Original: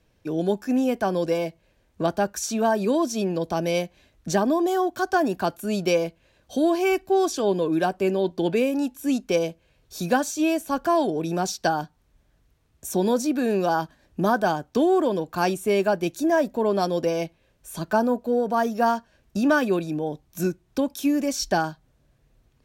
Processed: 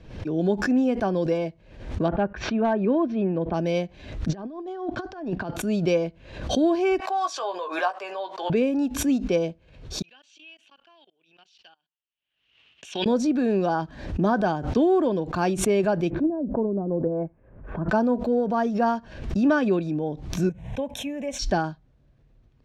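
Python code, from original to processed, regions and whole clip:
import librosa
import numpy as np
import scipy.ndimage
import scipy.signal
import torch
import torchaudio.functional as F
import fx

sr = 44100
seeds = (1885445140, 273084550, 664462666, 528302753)

y = fx.chain(x, sr, fx.lowpass(hz=2600.0, slope=24),
    fx.clip_hard(threshold_db=-13.5), at=(2.08, 3.54))
y = fx.chain(y, sr, fx.over_compress(threshold_db=-29.0, ratio=-0.5),
    fx.air_absorb(metres=120.0), at=(4.29, 5.54))
y = fx.chain(y, sr, fx.highpass(hz=640.0, slope=24),
    fx.peak_eq(hz=1100.0, db=8.5, octaves=0.51),
    fx.doubler(ms=17.0, db=-6.5), at=(7.0, 8.5))
y = fx.chain(y, sr, fx.level_steps(step_db=24),
    fx.bandpass_q(hz=2900.0, q=8.3), at=(10.02, 13.06))
y = fx.chain(y, sr, fx.lowpass(hz=1600.0, slope=24),
    fx.env_lowpass_down(base_hz=330.0, full_db=-18.0), at=(16.1, 17.89))
y = fx.chain(y, sr, fx.highpass(hz=73.0, slope=6),
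    fx.peak_eq(hz=490.0, db=4.5, octaves=0.24),
    fx.fixed_phaser(hz=1300.0, stages=6), at=(20.49, 21.39))
y = scipy.signal.sosfilt(scipy.signal.butter(2, 4600.0, 'lowpass', fs=sr, output='sos'), y)
y = fx.low_shelf(y, sr, hz=430.0, db=7.0)
y = fx.pre_swell(y, sr, db_per_s=81.0)
y = y * 10.0 ** (-4.0 / 20.0)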